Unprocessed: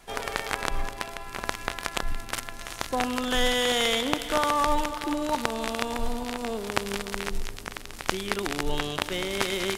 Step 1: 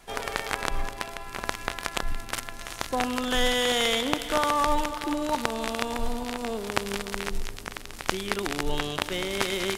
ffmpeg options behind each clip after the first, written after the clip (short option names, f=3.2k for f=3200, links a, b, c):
-af anull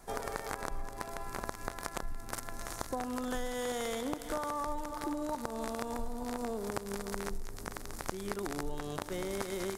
-af "equalizer=f=2.9k:w=1.2:g=-14,acompressor=threshold=-33dB:ratio=6"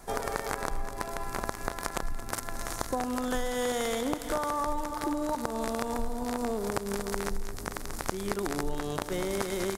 -af "aecho=1:1:222:0.178,volume=5.5dB"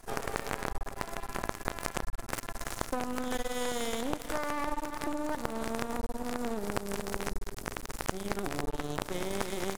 -af "aeval=exprs='max(val(0),0)':c=same"